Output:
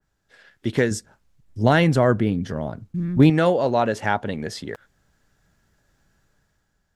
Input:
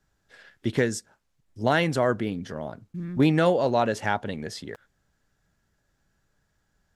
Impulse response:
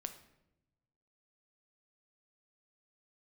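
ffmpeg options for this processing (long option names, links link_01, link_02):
-filter_complex "[0:a]asettb=1/sr,asplit=3[link_01][link_02][link_03];[link_01]atrim=end=0.914[link_04];[link_02]atrim=start=0.91:end=3.3,asetpts=PTS-STARTPTS,afade=type=in:duration=0.004:curve=qsin,afade=type=out:start_time=2.386:duration=0.004:curve=qsin,lowshelf=frequency=200:gain=10[link_05];[link_03]atrim=start=3.296[link_06];[link_04][link_05]acrossfade=duration=0.004:curve1=hsin:curve2=qsin[link_07];[link_07][link_06]acrossfade=duration=0.004:curve1=qsin:curve2=hsin,dynaudnorm=framelen=200:gausssize=7:maxgain=8.5dB,adynamicequalizer=threshold=0.0141:dfrequency=2700:dqfactor=0.7:tfrequency=2700:tqfactor=0.7:attack=5:release=100:ratio=0.375:range=2:mode=cutabove:tftype=highshelf,volume=-1.5dB"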